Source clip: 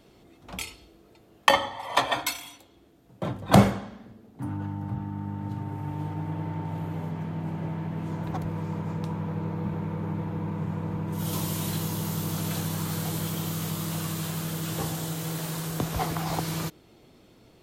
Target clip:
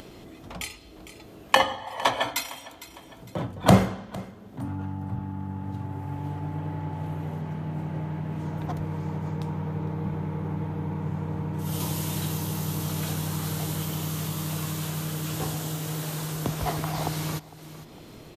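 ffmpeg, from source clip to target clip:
-af "aecho=1:1:438|876:0.1|0.023,asetrate=42336,aresample=44100,acompressor=mode=upward:threshold=-35dB:ratio=2.5"

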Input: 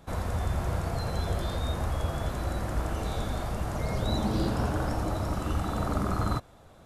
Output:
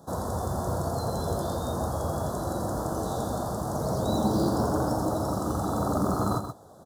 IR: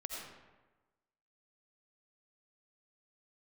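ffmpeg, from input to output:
-af "highpass=110,lowshelf=f=190:g=-3.5,acrusher=bits=7:mode=log:mix=0:aa=0.000001,asuperstop=centerf=2400:order=4:qfactor=0.64,aecho=1:1:128:0.376,volume=5.5dB"

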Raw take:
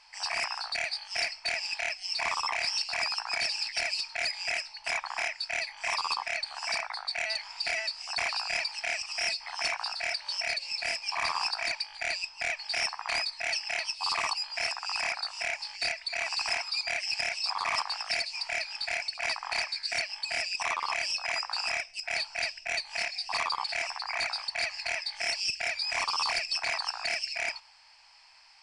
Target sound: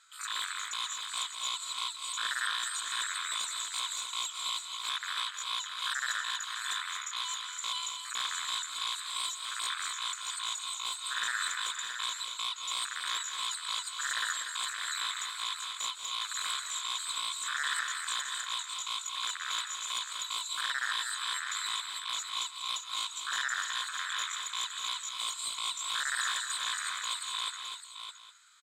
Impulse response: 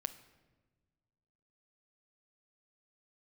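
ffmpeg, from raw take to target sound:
-af "highpass=f=530:p=1,aemphasis=mode=reproduction:type=75fm,bandreject=f=1.8k:w=6.3,asetrate=68011,aresample=44100,atempo=0.64842,aecho=1:1:167|191|240|612|812:0.168|0.251|0.398|0.398|0.126"

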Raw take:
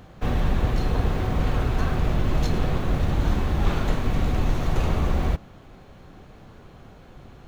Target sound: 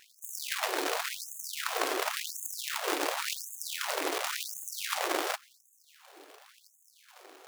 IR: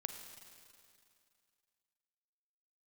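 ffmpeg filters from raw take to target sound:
-af "bass=f=250:g=10,treble=f=4k:g=0,acrusher=bits=3:mode=log:mix=0:aa=0.000001,afftfilt=real='re*gte(b*sr/1024,270*pow(6400/270,0.5+0.5*sin(2*PI*0.92*pts/sr)))':imag='im*gte(b*sr/1024,270*pow(6400/270,0.5+0.5*sin(2*PI*0.92*pts/sr)))':win_size=1024:overlap=0.75,volume=-4dB"

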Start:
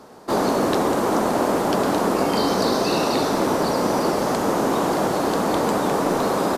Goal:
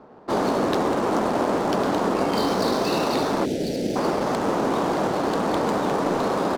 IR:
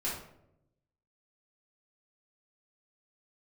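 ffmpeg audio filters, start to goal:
-filter_complex "[0:a]adynamicsmooth=sensitivity=6.5:basefreq=1.4k,asettb=1/sr,asplit=3[a][b][c];[a]atrim=end=3.454[d];[b]atrim=start=3.45:end=3.96,asetpts=PTS-STARTPTS,afade=t=in:d=0.004:c=qsin,afade=t=out:st=0.506:d=0.004:c=qsin,asuperstop=centerf=1100:order=4:qfactor=0.6[e];[c]atrim=start=3.956[f];[d][e]acrossfade=d=0.004:c1=hsin:c2=qsin[g];[g][f]acrossfade=d=0.004:c1=qsin:c2=hsin,volume=-2dB"

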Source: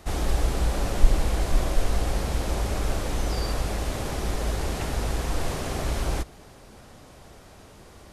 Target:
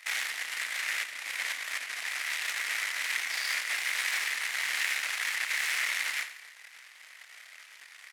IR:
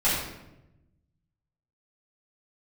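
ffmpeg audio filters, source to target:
-filter_complex "[0:a]acompressor=threshold=-27dB:ratio=12,flanger=delay=22.5:depth=7.6:speed=2.8,aeval=exprs='0.0794*(cos(1*acos(clip(val(0)/0.0794,-1,1)))-cos(1*PI/2))+0.0112*(cos(3*acos(clip(val(0)/0.0794,-1,1)))-cos(3*PI/2))+0.02*(cos(8*acos(clip(val(0)/0.0794,-1,1)))-cos(8*PI/2))':c=same,tremolo=f=270:d=0.462,highpass=f=2k:t=q:w=4.5,asplit=2[a][b];[b]aecho=0:1:86|172|258|344:0.251|0.108|0.0464|0.02[c];[a][c]amix=inputs=2:normalize=0,volume=7dB"

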